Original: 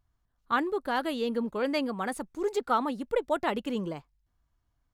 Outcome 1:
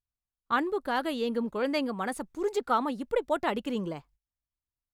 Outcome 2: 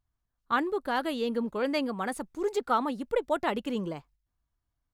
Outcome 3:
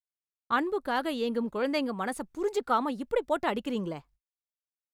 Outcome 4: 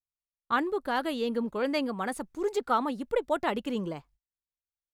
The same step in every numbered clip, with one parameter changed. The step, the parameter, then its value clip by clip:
gate, range: -21 dB, -7 dB, -60 dB, -34 dB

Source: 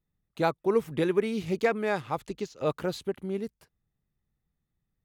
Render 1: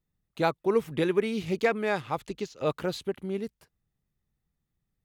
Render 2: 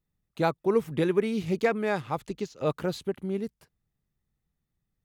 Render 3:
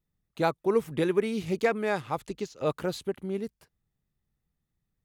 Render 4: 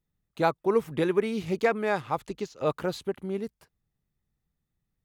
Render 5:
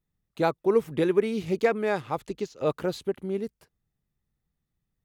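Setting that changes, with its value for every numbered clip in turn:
dynamic bell, frequency: 3 kHz, 160 Hz, 9.6 kHz, 1 kHz, 410 Hz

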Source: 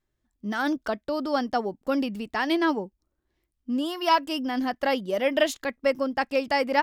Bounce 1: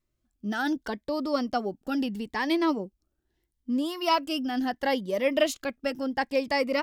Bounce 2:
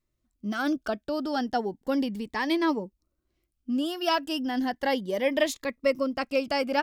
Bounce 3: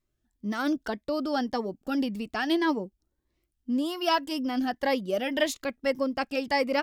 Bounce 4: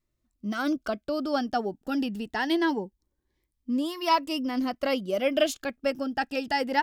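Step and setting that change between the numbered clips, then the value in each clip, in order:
Shepard-style phaser, rate: 0.75 Hz, 0.34 Hz, 1.8 Hz, 0.23 Hz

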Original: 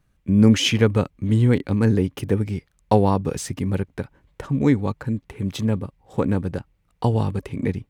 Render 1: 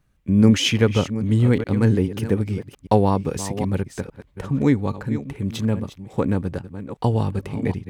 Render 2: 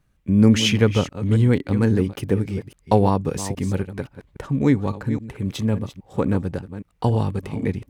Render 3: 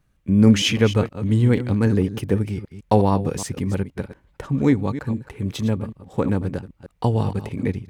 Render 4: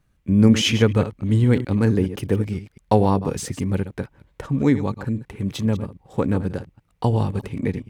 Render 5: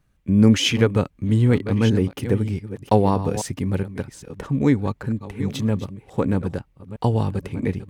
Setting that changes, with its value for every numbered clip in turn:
chunks repeated in reverse, time: 410 ms, 273 ms, 156 ms, 103 ms, 633 ms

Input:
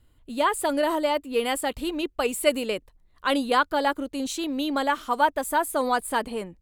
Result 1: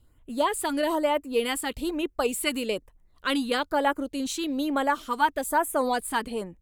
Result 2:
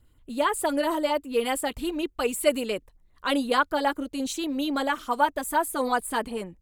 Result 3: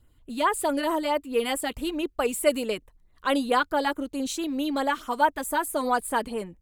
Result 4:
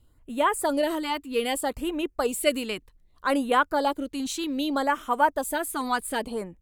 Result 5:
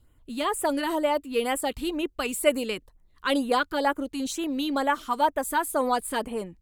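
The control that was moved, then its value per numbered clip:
LFO notch, rate: 1.1 Hz, 8.1 Hz, 4.6 Hz, 0.64 Hz, 2.1 Hz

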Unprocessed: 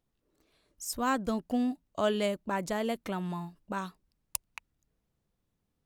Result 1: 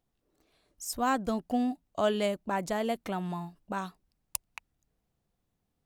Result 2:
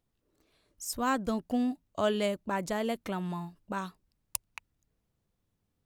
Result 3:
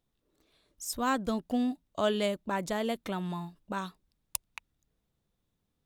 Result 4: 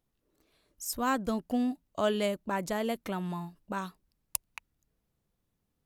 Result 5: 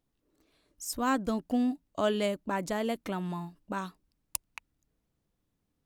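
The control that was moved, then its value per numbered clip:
peaking EQ, frequency: 740 Hz, 100 Hz, 3.6 kHz, 12 kHz, 290 Hz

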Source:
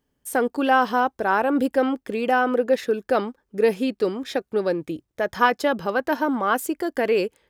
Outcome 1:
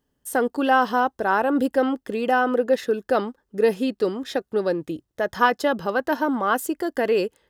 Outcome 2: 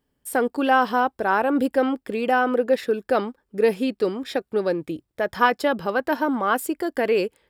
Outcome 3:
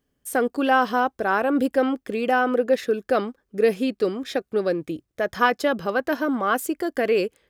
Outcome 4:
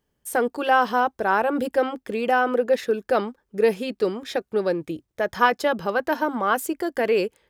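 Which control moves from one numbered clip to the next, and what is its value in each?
band-stop, frequency: 2.3 kHz, 6.3 kHz, 900 Hz, 270 Hz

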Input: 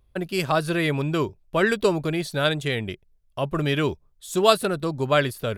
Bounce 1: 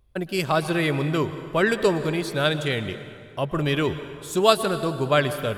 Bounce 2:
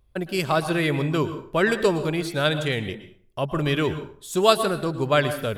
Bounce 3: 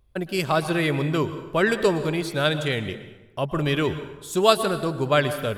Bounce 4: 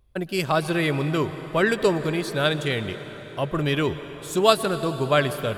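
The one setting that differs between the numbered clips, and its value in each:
plate-style reverb, RT60: 2.3 s, 0.51 s, 1.1 s, 5.2 s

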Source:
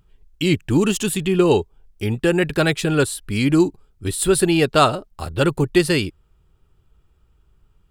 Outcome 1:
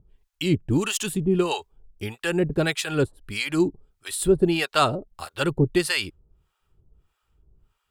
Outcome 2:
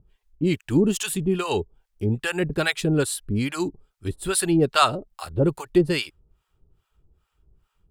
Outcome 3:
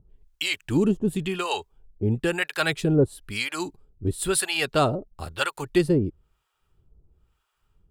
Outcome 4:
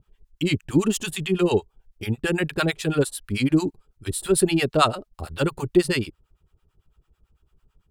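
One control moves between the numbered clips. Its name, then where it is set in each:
harmonic tremolo, rate: 1.6 Hz, 2.4 Hz, 1 Hz, 9 Hz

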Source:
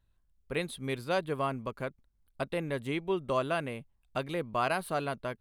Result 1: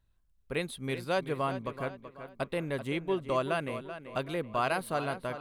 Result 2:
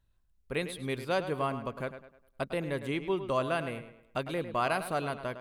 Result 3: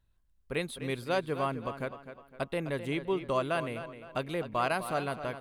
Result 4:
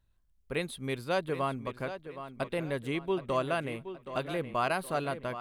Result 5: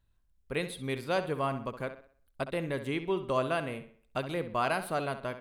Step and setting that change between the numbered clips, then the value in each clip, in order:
tape echo, time: 382 ms, 104 ms, 256 ms, 771 ms, 65 ms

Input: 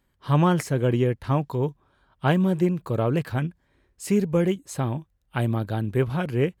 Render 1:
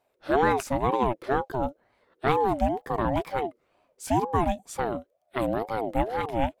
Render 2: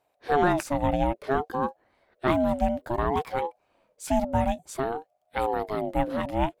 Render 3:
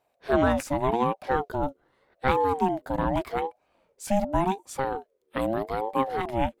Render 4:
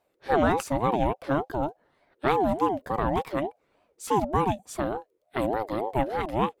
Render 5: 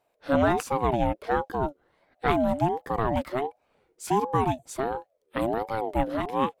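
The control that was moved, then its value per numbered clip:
ring modulator with a swept carrier, at: 2.1 Hz, 0.57 Hz, 0.84 Hz, 3.4 Hz, 1.4 Hz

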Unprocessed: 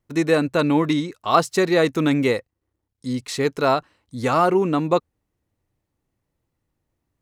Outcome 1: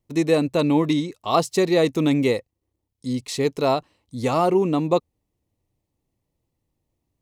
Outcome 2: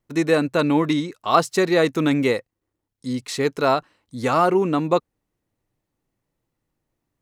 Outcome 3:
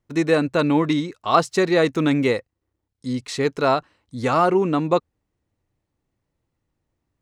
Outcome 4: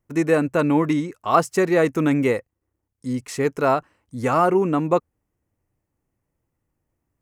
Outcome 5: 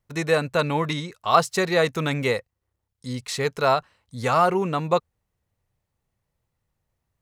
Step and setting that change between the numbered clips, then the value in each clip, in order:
peaking EQ, frequency: 1.5 kHz, 73 Hz, 14 kHz, 3.9 kHz, 300 Hz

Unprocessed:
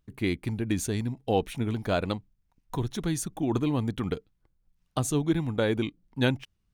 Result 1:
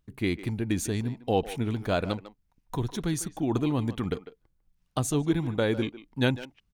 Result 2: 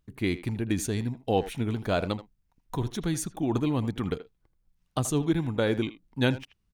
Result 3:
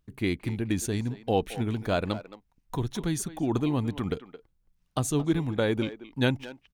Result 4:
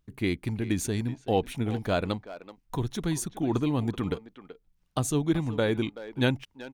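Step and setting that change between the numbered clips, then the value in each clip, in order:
speakerphone echo, time: 150 ms, 80 ms, 220 ms, 380 ms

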